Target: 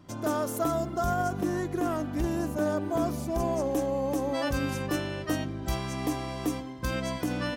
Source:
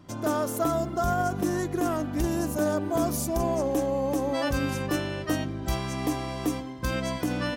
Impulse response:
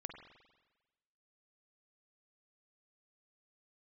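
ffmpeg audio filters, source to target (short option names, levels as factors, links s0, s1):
-filter_complex "[0:a]asettb=1/sr,asplit=3[s0][s1][s2];[s0]atrim=end=1.304[s3];[s1]atrim=start=1.3:end=3.38,asetpts=PTS-STARTPTS,afade=t=in:d=0.004:c=qsin,afade=t=out:st=2.076:d=0.004:c=qsin,acrossover=split=3700[s4][s5];[s5]acompressor=threshold=0.00631:ratio=4:attack=1:release=60[s6];[s4][s6]amix=inputs=2:normalize=0[s7];[s2]atrim=start=3.376[s8];[s3][s7]acrossfade=d=0.004:c1=hsin:c2=qsin[s9];[s9][s8]acrossfade=d=0.004:c1=qsin:c2=hsin,volume=0.794"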